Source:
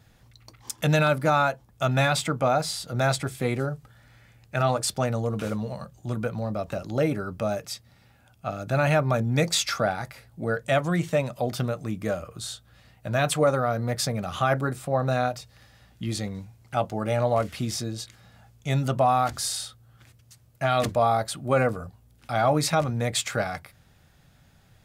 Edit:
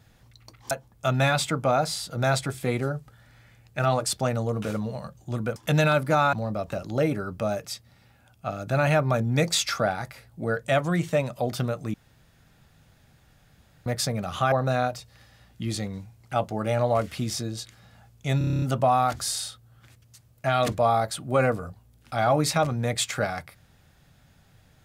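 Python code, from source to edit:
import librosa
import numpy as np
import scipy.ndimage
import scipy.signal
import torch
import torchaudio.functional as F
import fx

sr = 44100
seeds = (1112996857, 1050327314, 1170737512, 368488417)

y = fx.edit(x, sr, fx.move(start_s=0.71, length_s=0.77, to_s=6.33),
    fx.room_tone_fill(start_s=11.94, length_s=1.92),
    fx.cut(start_s=14.52, length_s=0.41),
    fx.stutter(start_s=18.79, slice_s=0.03, count=9), tone=tone)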